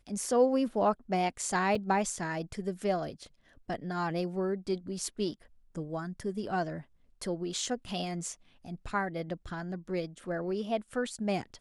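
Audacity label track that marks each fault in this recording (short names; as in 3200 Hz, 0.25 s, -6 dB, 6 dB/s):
1.750000	1.750000	gap 4.1 ms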